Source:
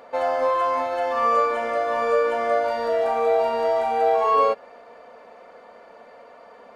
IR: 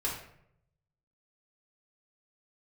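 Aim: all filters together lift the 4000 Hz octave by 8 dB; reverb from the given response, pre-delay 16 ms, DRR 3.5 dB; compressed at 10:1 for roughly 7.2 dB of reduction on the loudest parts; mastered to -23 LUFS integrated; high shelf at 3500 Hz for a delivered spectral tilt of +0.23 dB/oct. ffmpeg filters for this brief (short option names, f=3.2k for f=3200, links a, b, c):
-filter_complex "[0:a]highshelf=f=3.5k:g=5,equalizer=f=4k:t=o:g=7,acompressor=threshold=-22dB:ratio=10,asplit=2[a][b];[1:a]atrim=start_sample=2205,adelay=16[c];[b][c]afir=irnorm=-1:irlink=0,volume=-8.5dB[d];[a][d]amix=inputs=2:normalize=0,volume=1.5dB"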